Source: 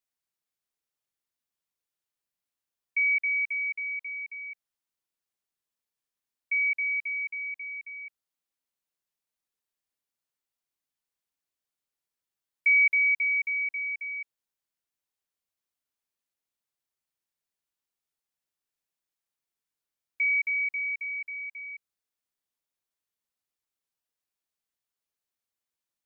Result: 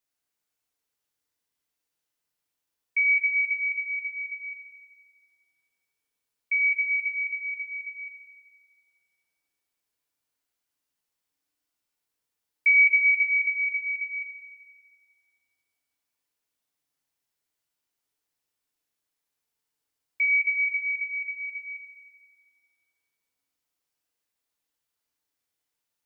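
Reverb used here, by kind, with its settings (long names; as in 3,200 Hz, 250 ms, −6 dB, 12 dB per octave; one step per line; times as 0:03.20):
feedback delay network reverb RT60 2 s, low-frequency decay 0.75×, high-frequency decay 0.9×, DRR 0 dB
level +2.5 dB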